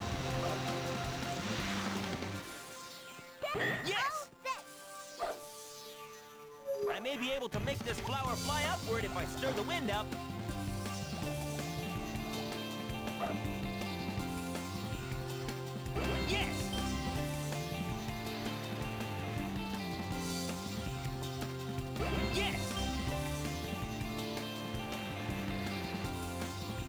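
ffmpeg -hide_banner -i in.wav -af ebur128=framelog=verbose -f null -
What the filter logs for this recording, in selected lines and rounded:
Integrated loudness:
  I:         -37.9 LUFS
  Threshold: -48.0 LUFS
Loudness range:
  LRA:         3.0 LU
  Threshold: -58.0 LUFS
  LRA low:   -39.3 LUFS
  LRA high:  -36.4 LUFS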